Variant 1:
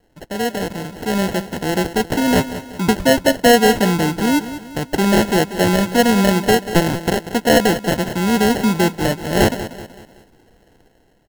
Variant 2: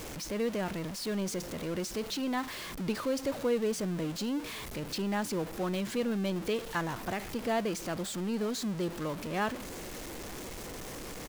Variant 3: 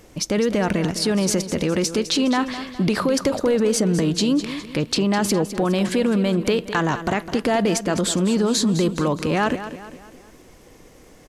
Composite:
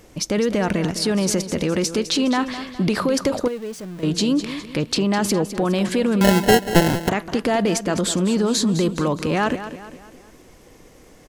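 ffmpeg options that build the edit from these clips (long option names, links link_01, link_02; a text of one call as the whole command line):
ffmpeg -i take0.wav -i take1.wav -i take2.wav -filter_complex "[2:a]asplit=3[link_01][link_02][link_03];[link_01]atrim=end=3.482[link_04];[1:a]atrim=start=3.478:end=4.032[link_05];[link_02]atrim=start=4.028:end=6.212[link_06];[0:a]atrim=start=6.208:end=7.092[link_07];[link_03]atrim=start=7.088[link_08];[link_04][link_05]acrossfade=duration=0.004:curve1=hsin:curve2=hsin[link_09];[link_09][link_06]acrossfade=duration=0.004:curve1=hsin:curve2=hsin[link_10];[link_10][link_07]acrossfade=duration=0.004:curve1=hsin:curve2=hsin[link_11];[link_11][link_08]acrossfade=duration=0.004:curve1=hsin:curve2=hsin" out.wav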